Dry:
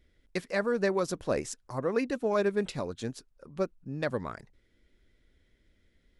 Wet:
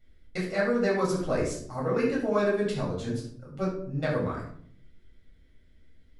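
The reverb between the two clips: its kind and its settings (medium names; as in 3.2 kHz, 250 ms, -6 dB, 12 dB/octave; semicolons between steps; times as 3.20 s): simulated room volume 830 m³, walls furnished, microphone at 7 m; trim -6.5 dB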